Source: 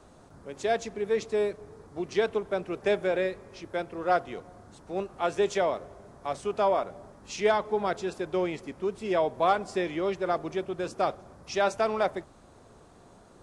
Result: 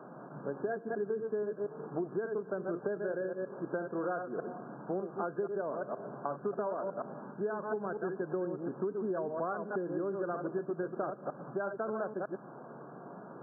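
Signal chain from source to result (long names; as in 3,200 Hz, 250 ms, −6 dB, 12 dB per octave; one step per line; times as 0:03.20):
delay that plays each chunk backwards 119 ms, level −6.5 dB
dynamic equaliser 810 Hz, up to −8 dB, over −40 dBFS, Q 1.5
downward compressor 10 to 1, threshold −38 dBFS, peak gain reduction 17.5 dB
brick-wall band-pass 120–1,700 Hz
level +6.5 dB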